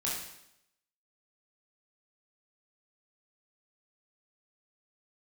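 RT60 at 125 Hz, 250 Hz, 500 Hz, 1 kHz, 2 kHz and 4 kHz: 0.75 s, 0.80 s, 0.80 s, 0.80 s, 0.75 s, 0.80 s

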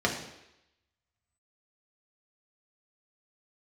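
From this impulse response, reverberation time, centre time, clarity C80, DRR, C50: 0.85 s, 26 ms, 9.5 dB, -1.0 dB, 7.0 dB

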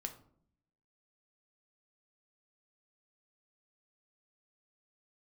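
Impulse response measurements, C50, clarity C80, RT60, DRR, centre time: 12.0 dB, 15.5 dB, 0.60 s, 5.0 dB, 10 ms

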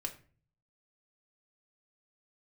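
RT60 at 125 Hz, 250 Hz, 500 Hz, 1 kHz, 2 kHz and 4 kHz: 0.85 s, 0.60 s, 0.45 s, 0.35 s, 0.40 s, 0.30 s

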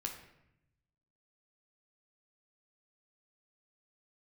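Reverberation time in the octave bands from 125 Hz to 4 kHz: 1.4 s, 1.2 s, 0.85 s, 0.75 s, 0.80 s, 0.60 s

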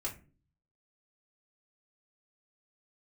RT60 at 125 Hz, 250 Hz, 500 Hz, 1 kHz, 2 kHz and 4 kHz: 0.80 s, 0.60 s, 0.45 s, 0.30 s, 0.30 s, 0.20 s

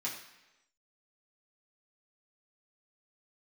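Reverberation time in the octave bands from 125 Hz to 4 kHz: 0.85 s, 0.90 s, 1.0 s, 1.0 s, 1.0 s, 0.95 s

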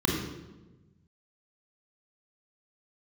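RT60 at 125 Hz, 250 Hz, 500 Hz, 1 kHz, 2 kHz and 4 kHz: 1.9 s, 1.5 s, 1.3 s, 1.0 s, 0.85 s, 0.80 s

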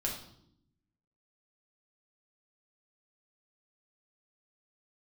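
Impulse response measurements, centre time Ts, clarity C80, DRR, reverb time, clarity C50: 30 ms, 9.0 dB, -2.0 dB, 0.75 s, 5.5 dB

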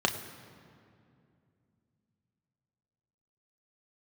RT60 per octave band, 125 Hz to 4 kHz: 3.9 s, 3.7 s, 2.7 s, 2.3 s, 2.0 s, 1.5 s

